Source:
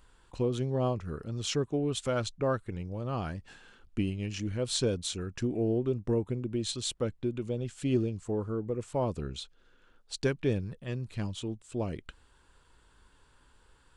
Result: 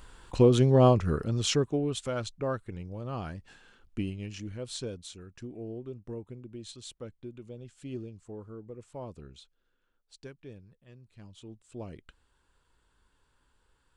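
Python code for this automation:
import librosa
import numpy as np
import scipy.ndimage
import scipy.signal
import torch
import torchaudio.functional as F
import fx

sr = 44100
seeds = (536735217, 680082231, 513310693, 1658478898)

y = fx.gain(x, sr, db=fx.line((1.1, 9.5), (2.09, -2.5), (4.06, -2.5), (5.2, -11.0), (9.19, -11.0), (10.48, -18.0), (11.12, -18.0), (11.62, -8.0)))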